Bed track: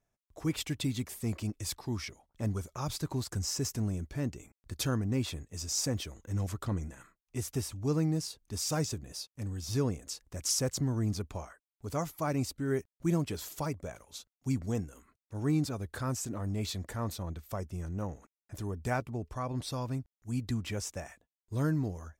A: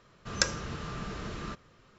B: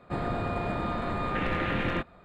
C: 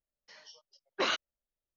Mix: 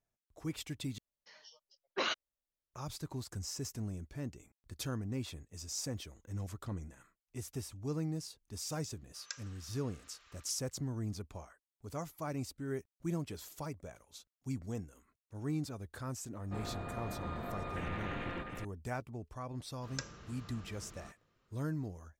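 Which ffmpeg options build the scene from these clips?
ffmpeg -i bed.wav -i cue0.wav -i cue1.wav -i cue2.wav -filter_complex "[1:a]asplit=2[link_01][link_02];[0:a]volume=-7.5dB[link_03];[link_01]highpass=1400[link_04];[2:a]aecho=1:1:702:0.596[link_05];[link_03]asplit=2[link_06][link_07];[link_06]atrim=end=0.984[link_08];[3:a]atrim=end=1.76,asetpts=PTS-STARTPTS,volume=-4dB[link_09];[link_07]atrim=start=2.736[link_10];[link_04]atrim=end=1.98,asetpts=PTS-STARTPTS,volume=-16.5dB,afade=type=in:duration=0.004:curve=hsin,afade=type=out:start_time=1.976:duration=0.004:curve=hsin,adelay=8890[link_11];[link_05]atrim=end=2.24,asetpts=PTS-STARTPTS,volume=-12dB,afade=type=in:duration=0.004:curve=hsin,afade=type=out:start_time=2.236:duration=0.004:curve=hsin,adelay=16410[link_12];[link_02]atrim=end=1.98,asetpts=PTS-STARTPTS,volume=-15dB,afade=type=in:duration=0.004:curve=hsin,afade=type=out:start_time=1.976:duration=0.004:curve=hsin,adelay=19570[link_13];[link_08][link_09]acrossfade=duration=0.004:curve1=hsin:curve2=hsin[link_14];[link_14][link_10]acrossfade=duration=0.004:curve1=hsin:curve2=hsin[link_15];[link_15][link_11][link_12][link_13]amix=inputs=4:normalize=0" out.wav

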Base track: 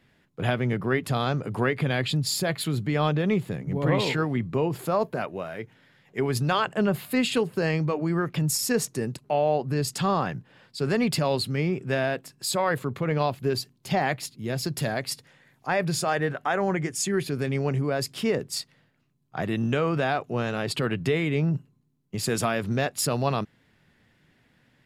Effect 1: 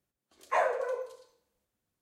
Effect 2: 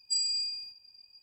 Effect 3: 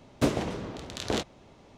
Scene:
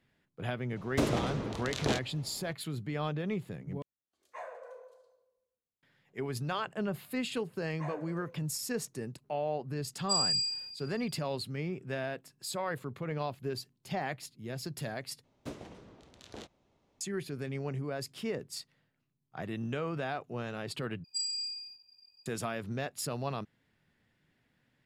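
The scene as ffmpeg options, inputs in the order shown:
ffmpeg -i bed.wav -i cue0.wav -i cue1.wav -i cue2.wav -filter_complex "[3:a]asplit=2[link_01][link_02];[1:a]asplit=2[link_03][link_04];[2:a]asplit=2[link_05][link_06];[0:a]volume=-10.5dB[link_07];[link_01]alimiter=level_in=16.5dB:limit=-1dB:release=50:level=0:latency=1[link_08];[link_03]asplit=2[link_09][link_10];[link_10]adelay=141,lowpass=frequency=1800:poles=1,volume=-10dB,asplit=2[link_11][link_12];[link_12]adelay=141,lowpass=frequency=1800:poles=1,volume=0.48,asplit=2[link_13][link_14];[link_14]adelay=141,lowpass=frequency=1800:poles=1,volume=0.48,asplit=2[link_15][link_16];[link_16]adelay=141,lowpass=frequency=1800:poles=1,volume=0.48,asplit=2[link_17][link_18];[link_18]adelay=141,lowpass=frequency=1800:poles=1,volume=0.48[link_19];[link_09][link_11][link_13][link_15][link_17][link_19]amix=inputs=6:normalize=0[link_20];[link_05]aecho=1:1:58|195:0.447|0.266[link_21];[link_06]highpass=frequency=100:poles=1[link_22];[link_07]asplit=4[link_23][link_24][link_25][link_26];[link_23]atrim=end=3.824[link_27];[link_20]atrim=end=2.01,asetpts=PTS-STARTPTS,volume=-17dB[link_28];[link_24]atrim=start=5.826:end=15.244[link_29];[link_02]atrim=end=1.77,asetpts=PTS-STARTPTS,volume=-17.5dB[link_30];[link_25]atrim=start=17.006:end=21.044[link_31];[link_22]atrim=end=1.22,asetpts=PTS-STARTPTS,volume=-5dB[link_32];[link_26]atrim=start=22.256[link_33];[link_08]atrim=end=1.77,asetpts=PTS-STARTPTS,volume=-16.5dB,afade=type=in:duration=0.004:curve=hsin,afade=type=out:start_time=1.766:duration=0.004:curve=hsin,adelay=760[link_34];[link_04]atrim=end=2.01,asetpts=PTS-STARTPTS,volume=-16.5dB,afade=type=in:duration=0.004:curve=hsin,afade=type=out:start_time=2.006:duration=0.004:curve=hsin,adelay=7280[link_35];[link_21]atrim=end=1.22,asetpts=PTS-STARTPTS,volume=-0.5dB,afade=type=in:duration=0.004:curve=hsin,afade=type=out:start_time=1.216:duration=0.004:curve=hsin,adelay=9990[link_36];[link_27][link_28]acrossfade=duration=0.004:curve1=hsin:curve2=hsin[link_37];[link_37][link_29]acrossfade=duration=0.004:curve1=hsin:curve2=hsin[link_38];[link_38][link_30]acrossfade=duration=0.004:curve1=hsin:curve2=hsin[link_39];[link_39][link_31]acrossfade=duration=0.004:curve1=hsin:curve2=hsin[link_40];[link_40][link_32]acrossfade=duration=0.004:curve1=hsin:curve2=hsin[link_41];[link_41][link_33]acrossfade=duration=0.004:curve1=hsin:curve2=hsin[link_42];[link_42][link_34][link_35][link_36]amix=inputs=4:normalize=0" out.wav

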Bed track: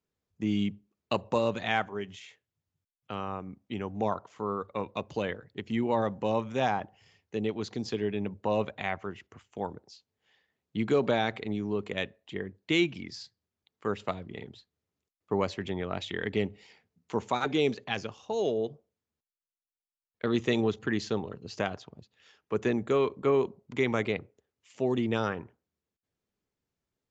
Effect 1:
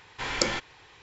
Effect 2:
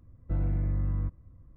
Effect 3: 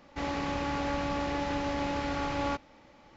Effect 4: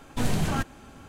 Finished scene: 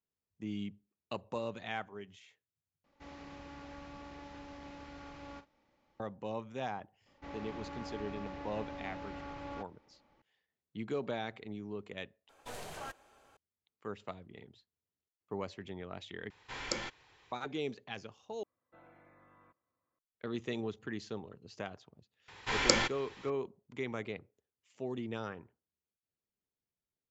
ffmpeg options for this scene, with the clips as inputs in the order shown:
ffmpeg -i bed.wav -i cue0.wav -i cue1.wav -i cue2.wav -i cue3.wav -filter_complex "[3:a]asplit=2[link_01][link_02];[1:a]asplit=2[link_03][link_04];[0:a]volume=-11dB[link_05];[link_01]asplit=2[link_06][link_07];[link_07]adelay=43,volume=-12.5dB[link_08];[link_06][link_08]amix=inputs=2:normalize=0[link_09];[link_02]highshelf=frequency=4600:gain=-10[link_10];[4:a]lowshelf=frequency=340:width_type=q:width=1.5:gain=-12.5[link_11];[2:a]highpass=800[link_12];[link_05]asplit=5[link_13][link_14][link_15][link_16][link_17];[link_13]atrim=end=2.844[link_18];[link_09]atrim=end=3.16,asetpts=PTS-STARTPTS,volume=-17.5dB[link_19];[link_14]atrim=start=5.996:end=12.294[link_20];[link_11]atrim=end=1.08,asetpts=PTS-STARTPTS,volume=-13.5dB[link_21];[link_15]atrim=start=13.366:end=16.304[link_22];[link_03]atrim=end=1.02,asetpts=PTS-STARTPTS,volume=-10.5dB[link_23];[link_16]atrim=start=17.316:end=18.434[link_24];[link_12]atrim=end=1.56,asetpts=PTS-STARTPTS,volume=-7.5dB[link_25];[link_17]atrim=start=19.986[link_26];[link_10]atrim=end=3.16,asetpts=PTS-STARTPTS,volume=-12.5dB,afade=type=in:duration=0.004:curve=hsin,afade=type=out:start_time=3.156:duration=0.004:curve=hsin,adelay=311346S[link_27];[link_04]atrim=end=1.02,asetpts=PTS-STARTPTS,volume=-0.5dB,afade=type=in:duration=0.004:curve=hsin,afade=type=out:start_time=1.016:duration=0.004:curve=hsin,adelay=982548S[link_28];[link_18][link_19]acrossfade=duration=0.004:curve1=hsin:curve2=hsin[link_29];[link_29][link_20]acrossfade=duration=0.004:curve1=hsin:curve2=hsin[link_30];[link_30][link_21]acrossfade=duration=0.004:curve1=hsin:curve2=hsin[link_31];[link_31][link_22]acrossfade=duration=0.004:curve1=hsin:curve2=hsin[link_32];[link_32][link_23]acrossfade=duration=0.004:curve1=hsin:curve2=hsin[link_33];[link_33][link_24]acrossfade=duration=0.004:curve1=hsin:curve2=hsin[link_34];[link_34][link_25]acrossfade=duration=0.004:curve1=hsin:curve2=hsin[link_35];[link_35][link_26]acrossfade=duration=0.004:curve1=hsin:curve2=hsin[link_36];[link_36][link_27][link_28]amix=inputs=3:normalize=0" out.wav

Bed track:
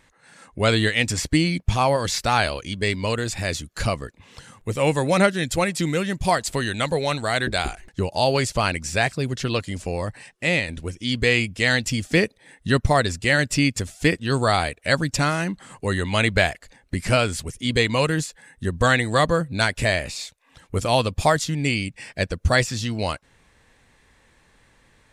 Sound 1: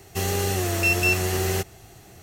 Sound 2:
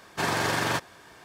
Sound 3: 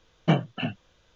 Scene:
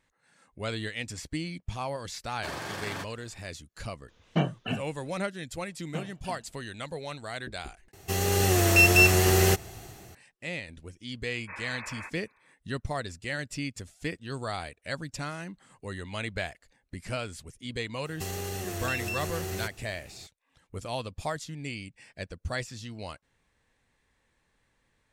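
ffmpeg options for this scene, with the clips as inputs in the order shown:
ffmpeg -i bed.wav -i cue0.wav -i cue1.wav -i cue2.wav -filter_complex "[2:a]asplit=2[link_01][link_02];[3:a]asplit=2[link_03][link_04];[1:a]asplit=2[link_05][link_06];[0:a]volume=-14.5dB[link_07];[link_01]bandreject=frequency=950:width=22[link_08];[link_03]alimiter=limit=-12.5dB:level=0:latency=1:release=71[link_09];[link_04]aecho=1:1:92|184|276:0.141|0.0438|0.0136[link_10];[link_05]dynaudnorm=framelen=130:gausssize=7:maxgain=8dB[link_11];[link_02]lowpass=frequency=2300:width_type=q:width=0.5098,lowpass=frequency=2300:width_type=q:width=0.6013,lowpass=frequency=2300:width_type=q:width=0.9,lowpass=frequency=2300:width_type=q:width=2.563,afreqshift=-2700[link_12];[link_06]acompressor=threshold=-24dB:ratio=6:attack=3.2:release=140:knee=1:detection=peak[link_13];[link_07]asplit=2[link_14][link_15];[link_14]atrim=end=7.934[link_16];[link_11]atrim=end=2.22,asetpts=PTS-STARTPTS,volume=-3.5dB[link_17];[link_15]atrim=start=10.146[link_18];[link_08]atrim=end=1.24,asetpts=PTS-STARTPTS,volume=-10.5dB,afade=type=in:duration=0.004:curve=hsin,afade=type=out:start_time=1.236:duration=0.004:curve=hsin,adelay=2250[link_19];[link_09]atrim=end=1.15,asetpts=PTS-STARTPTS,volume=-2dB,afade=type=in:duration=0.004:curve=hsin,afade=type=out:start_time=1.146:duration=0.004:curve=hsin,adelay=4080[link_20];[link_10]atrim=end=1.15,asetpts=PTS-STARTPTS,volume=-15.5dB,afade=type=in:duration=0.004:curve=hsin,afade=type=out:start_time=1.146:duration=0.004:curve=hsin,adelay=5660[link_21];[link_12]atrim=end=1.24,asetpts=PTS-STARTPTS,volume=-14.5dB,afade=type=in:duration=0.004:curve=hsin,afade=type=out:start_time=1.236:duration=0.004:curve=hsin,adelay=498330S[link_22];[link_13]atrim=end=2.22,asetpts=PTS-STARTPTS,volume=-6dB,afade=type=in:duration=0.004:curve=hsin,afade=type=out:start_time=2.216:duration=0.004:curve=hsin,adelay=18050[link_23];[link_16][link_17]acrossfade=duration=0.004:curve1=hsin:curve2=hsin[link_24];[link_24][link_18]acrossfade=duration=0.004:curve1=hsin:curve2=hsin[link_25];[link_25][link_19][link_20][link_21][link_22][link_23]amix=inputs=6:normalize=0" out.wav

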